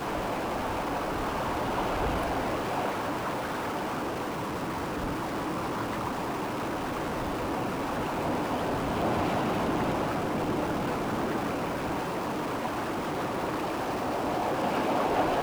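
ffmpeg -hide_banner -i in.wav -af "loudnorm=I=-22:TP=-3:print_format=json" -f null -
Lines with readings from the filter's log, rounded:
"input_i" : "-30.2",
"input_tp" : "-15.7",
"input_lra" : "2.5",
"input_thresh" : "-40.2",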